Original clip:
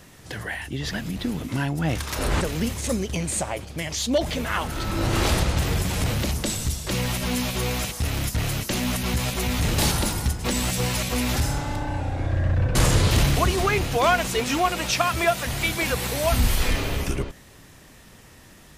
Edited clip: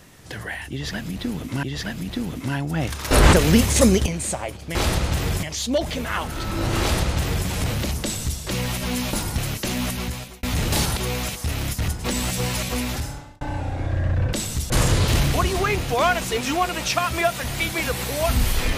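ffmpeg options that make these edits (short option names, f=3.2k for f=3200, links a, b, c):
-filter_complex "[0:a]asplit=14[a][b][c][d][e][f][g][h][i][j][k][l][m][n];[a]atrim=end=1.632[o];[b]atrim=start=0.708:end=2.192[p];[c]atrim=start=2.188:end=3.142,asetpts=PTS-STARTPTS,volume=10dB[q];[d]atrim=start=3.138:end=3.832[r];[e]atrim=start=5.198:end=5.882[s];[f]atrim=start=3.828:end=7.532[t];[g]atrim=start=10.028:end=10.282[u];[h]atrim=start=8.438:end=9.49,asetpts=PTS-STARTPTS,afade=t=out:st=0.512:d=0.54[v];[i]atrim=start=9.49:end=10.032,asetpts=PTS-STARTPTS,afade=t=in:d=0.004:c=hsin[w];[j]atrim=start=7.528:end=8.442[x];[k]atrim=start=10.278:end=11.81,asetpts=PTS-STARTPTS,afade=t=out:st=0.842:d=0.69[y];[l]atrim=start=11.81:end=12.732,asetpts=PTS-STARTPTS,afade=t=in:d=0.004:c=hsin[z];[m]atrim=start=6.428:end=6.802[aa];[n]atrim=start=12.728[ab];[o][p]acrossfade=d=0.004:c1=hsin:c2=hsin[ac];[ac][q]acrossfade=d=0.004:c1=hsin:c2=hsin[ad];[ad][r]acrossfade=d=0.004:c1=hsin:c2=hsin[ae];[ae][s]acrossfade=d=0.004:c1=hsin:c2=hsin[af];[af][t]acrossfade=d=0.004:c1=hsin:c2=hsin[ag];[ag][u]acrossfade=d=0.004:c1=hsin:c2=hsin[ah];[v][w]concat=n=2:v=0:a=1[ai];[ah][ai]acrossfade=d=0.004:c1=hsin:c2=hsin[aj];[aj][x]acrossfade=d=0.004:c1=hsin:c2=hsin[ak];[y][z]concat=n=2:v=0:a=1[al];[ak][al]acrossfade=d=0.004:c1=hsin:c2=hsin[am];[am][aa]acrossfade=d=0.004:c1=hsin:c2=hsin[an];[an][ab]acrossfade=d=0.004:c1=hsin:c2=hsin"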